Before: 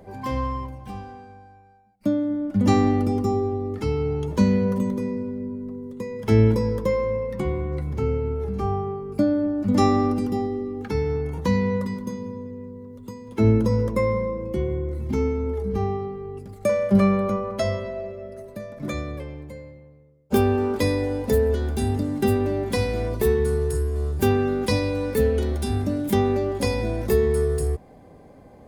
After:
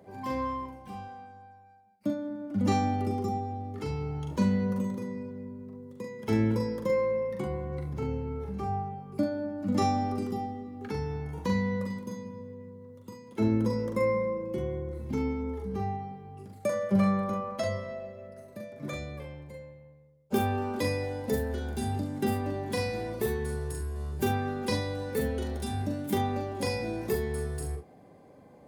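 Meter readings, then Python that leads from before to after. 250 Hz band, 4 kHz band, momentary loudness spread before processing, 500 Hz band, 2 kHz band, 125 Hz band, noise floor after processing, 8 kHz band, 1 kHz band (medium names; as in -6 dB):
-7.5 dB, -5.5 dB, 14 LU, -8.5 dB, -5.0 dB, -8.5 dB, -54 dBFS, -5.5 dB, -3.5 dB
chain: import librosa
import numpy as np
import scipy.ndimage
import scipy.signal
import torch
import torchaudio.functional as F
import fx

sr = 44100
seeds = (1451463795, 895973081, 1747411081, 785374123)

p1 = scipy.signal.sosfilt(scipy.signal.butter(2, 110.0, 'highpass', fs=sr, output='sos'), x)
p2 = p1 + fx.room_early_taps(p1, sr, ms=(42, 70), db=(-4.0, -12.5), dry=0)
y = p2 * 10.0 ** (-7.0 / 20.0)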